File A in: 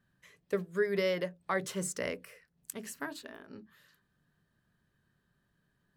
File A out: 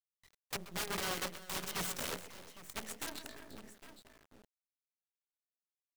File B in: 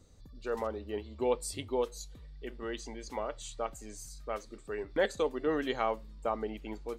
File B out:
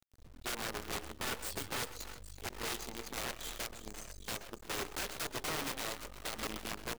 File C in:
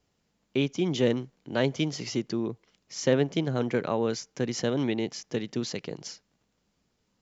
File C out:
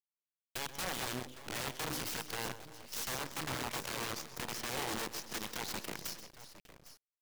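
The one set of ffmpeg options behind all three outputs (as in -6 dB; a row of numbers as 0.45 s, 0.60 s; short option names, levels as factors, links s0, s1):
-filter_complex "[0:a]afftdn=nr=13:nf=-49,equalizer=f=3400:w=2.7:g=6.5,bandreject=f=306:t=h:w=4,bandreject=f=612:t=h:w=4,bandreject=f=918:t=h:w=4,bandreject=f=1224:t=h:w=4,bandreject=f=1530:t=h:w=4,bandreject=f=1836:t=h:w=4,bandreject=f=2142:t=h:w=4,bandreject=f=2448:t=h:w=4,bandreject=f=2754:t=h:w=4,bandreject=f=3060:t=h:w=4,bandreject=f=3366:t=h:w=4,bandreject=f=3672:t=h:w=4,bandreject=f=3978:t=h:w=4,bandreject=f=4284:t=h:w=4,acrossover=split=530|650[s0][s1][s2];[s2]alimiter=level_in=1.41:limit=0.0631:level=0:latency=1:release=14,volume=0.708[s3];[s0][s1][s3]amix=inputs=3:normalize=0,acompressor=threshold=0.02:ratio=10,aeval=exprs='(mod(50.1*val(0)+1,2)-1)/50.1':c=same,asplit=2[s4][s5];[s5]aecho=0:1:130|345|808:0.376|0.266|0.299[s6];[s4][s6]amix=inputs=2:normalize=0,acrusher=bits=7:dc=4:mix=0:aa=0.000001"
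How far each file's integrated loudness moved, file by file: -5.0 LU, -4.5 LU, -10.0 LU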